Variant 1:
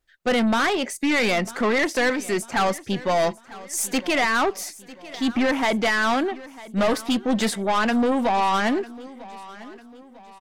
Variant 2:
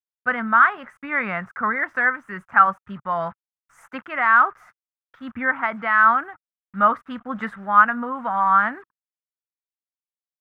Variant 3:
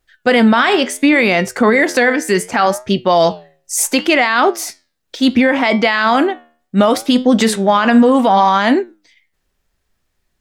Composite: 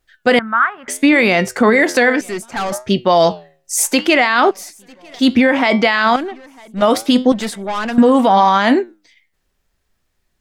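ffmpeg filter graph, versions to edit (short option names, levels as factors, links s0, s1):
-filter_complex "[0:a]asplit=4[s0][s1][s2][s3];[2:a]asplit=6[s4][s5][s6][s7][s8][s9];[s4]atrim=end=0.392[s10];[1:a]atrim=start=0.388:end=0.882[s11];[s5]atrim=start=0.878:end=2.212[s12];[s0]atrim=start=2.208:end=2.722[s13];[s6]atrim=start=2.718:end=4.512[s14];[s1]atrim=start=4.508:end=5.192[s15];[s7]atrim=start=5.188:end=6.162[s16];[s2]atrim=start=6.158:end=6.822[s17];[s8]atrim=start=6.818:end=7.322[s18];[s3]atrim=start=7.318:end=7.982[s19];[s9]atrim=start=7.978[s20];[s10][s11]acrossfade=d=0.004:c1=hsin:c2=hsin[s21];[s21][s12]acrossfade=d=0.004:c1=hsin:c2=hsin[s22];[s22][s13]acrossfade=d=0.004:c1=hsin:c2=hsin[s23];[s23][s14]acrossfade=d=0.004:c1=hsin:c2=hsin[s24];[s24][s15]acrossfade=d=0.004:c1=hsin:c2=hsin[s25];[s25][s16]acrossfade=d=0.004:c1=hsin:c2=hsin[s26];[s26][s17]acrossfade=d=0.004:c1=hsin:c2=hsin[s27];[s27][s18]acrossfade=d=0.004:c1=hsin:c2=hsin[s28];[s28][s19]acrossfade=d=0.004:c1=hsin:c2=hsin[s29];[s29][s20]acrossfade=d=0.004:c1=hsin:c2=hsin"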